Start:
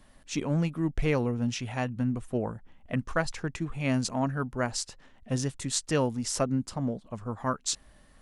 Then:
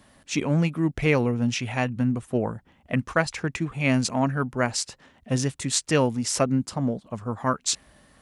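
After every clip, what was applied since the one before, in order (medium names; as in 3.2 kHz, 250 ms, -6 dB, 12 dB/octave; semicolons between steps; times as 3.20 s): high-pass 71 Hz; dynamic bell 2.3 kHz, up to +5 dB, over -51 dBFS, Q 2.6; trim +5 dB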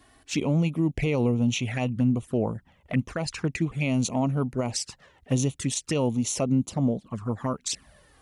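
peak limiter -16.5 dBFS, peak gain reduction 10.5 dB; touch-sensitive flanger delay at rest 2.9 ms, full sweep at -24 dBFS; trim +2 dB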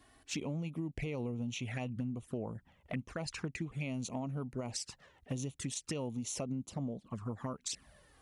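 compression, threshold -29 dBFS, peak gain reduction 10.5 dB; trim -6 dB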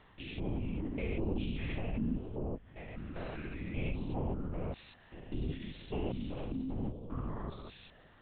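spectrogram pixelated in time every 200 ms; LPC vocoder at 8 kHz whisper; trim +5 dB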